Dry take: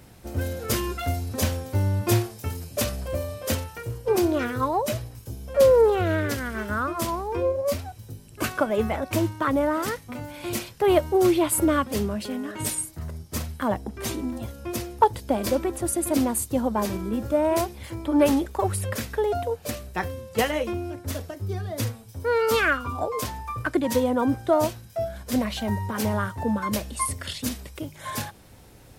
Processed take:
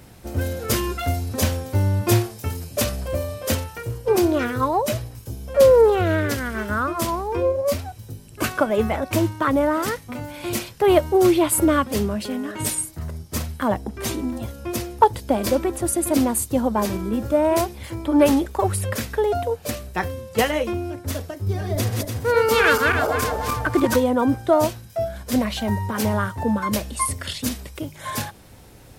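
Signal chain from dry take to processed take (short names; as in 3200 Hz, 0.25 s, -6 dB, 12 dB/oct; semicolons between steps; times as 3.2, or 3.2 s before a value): 21.32–23.96 regenerating reverse delay 0.146 s, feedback 57%, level -2 dB; gain +3.5 dB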